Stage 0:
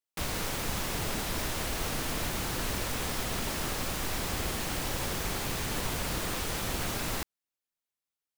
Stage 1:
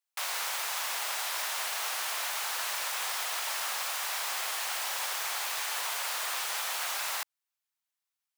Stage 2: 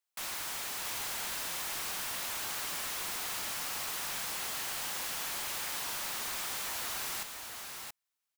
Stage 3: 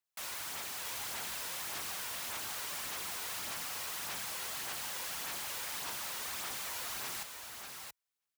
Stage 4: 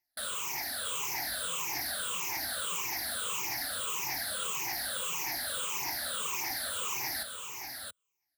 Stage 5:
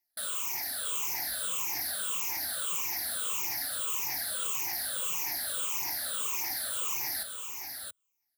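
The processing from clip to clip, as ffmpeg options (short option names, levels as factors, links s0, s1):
-af "highpass=f=750:w=0.5412,highpass=f=750:w=1.3066,volume=1.33"
-af "aeval=exprs='0.0211*(abs(mod(val(0)/0.0211+3,4)-2)-1)':c=same,aecho=1:1:676:0.531"
-af "highpass=49,aphaser=in_gain=1:out_gain=1:delay=2.1:decay=0.31:speed=1.7:type=sinusoidal,volume=0.668"
-af "afftfilt=real='re*pow(10,22/40*sin(2*PI*(0.74*log(max(b,1)*sr/1024/100)/log(2)-(-1.7)*(pts-256)/sr)))':imag='im*pow(10,22/40*sin(2*PI*(0.74*log(max(b,1)*sr/1024/100)/log(2)-(-1.7)*(pts-256)/sr)))':win_size=1024:overlap=0.75"
-af "highshelf=f=6600:g=8.5,volume=0.668"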